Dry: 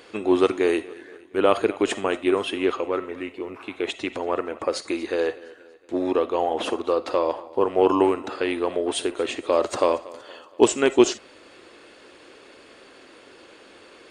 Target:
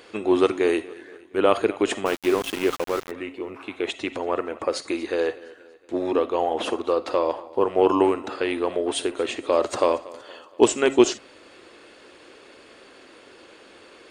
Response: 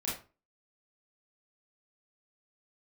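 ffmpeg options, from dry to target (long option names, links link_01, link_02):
-filter_complex "[0:a]bandreject=frequency=137.7:width_type=h:width=4,bandreject=frequency=275.4:width_type=h:width=4,asplit=3[link_01][link_02][link_03];[link_01]afade=type=out:start_time=2.05:duration=0.02[link_04];[link_02]aeval=exprs='val(0)*gte(abs(val(0)),0.0398)':channel_layout=same,afade=type=in:start_time=2.05:duration=0.02,afade=type=out:start_time=3.1:duration=0.02[link_05];[link_03]afade=type=in:start_time=3.1:duration=0.02[link_06];[link_04][link_05][link_06]amix=inputs=3:normalize=0"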